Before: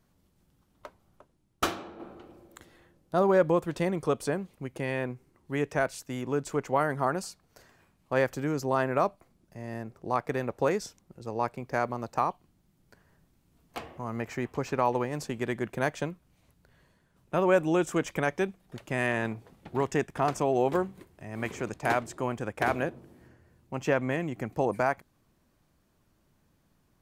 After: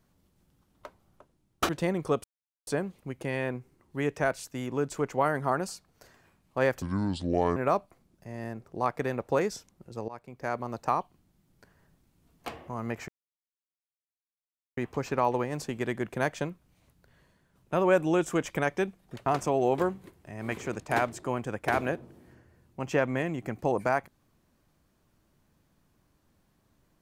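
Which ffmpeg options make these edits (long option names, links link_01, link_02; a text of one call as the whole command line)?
ffmpeg -i in.wav -filter_complex "[0:a]asplit=8[link_01][link_02][link_03][link_04][link_05][link_06][link_07][link_08];[link_01]atrim=end=1.692[link_09];[link_02]atrim=start=3.668:end=4.22,asetpts=PTS-STARTPTS,afade=type=out:start_time=0.548:duration=0.004:curve=hsin,apad=pad_dur=0.43[link_10];[link_03]atrim=start=4.22:end=8.374,asetpts=PTS-STARTPTS,afade=type=in:duration=0.004:curve=hsin[link_11];[link_04]atrim=start=8.37:end=8.86,asetpts=PTS-STARTPTS,asetrate=29106,aresample=44100[link_12];[link_05]atrim=start=8.856:end=11.38,asetpts=PTS-STARTPTS,afade=type=out:start_time=2.52:duration=0.004:curve=hsin:silence=0.125893[link_13];[link_06]atrim=start=11.38:end=14.38,asetpts=PTS-STARTPTS,afade=type=in:duration=0.68:silence=0.125893,afade=type=out:start_time=2.996:duration=0.004:curve=hsin,apad=pad_dur=1.69[link_14];[link_07]atrim=start=14.38:end=18.872,asetpts=PTS-STARTPTS,afade=type=in:duration=0.004:curve=hsin[link_15];[link_08]atrim=start=20.198[link_16];[link_10][link_11]concat=n=2:v=0:a=1[link_17];[link_09][link_17]acrossfade=duration=0.004:curve1=hsin:curve2=hsin[link_18];[link_18][link_12]acrossfade=duration=0.004:curve1=hsin:curve2=hsin[link_19];[link_13][link_14][link_15]concat=n=3:v=0:a=1[link_20];[link_19][link_20]acrossfade=duration=0.004:curve1=hsin:curve2=hsin[link_21];[link_21][link_16]acrossfade=duration=0.004:curve1=hsin:curve2=hsin" out.wav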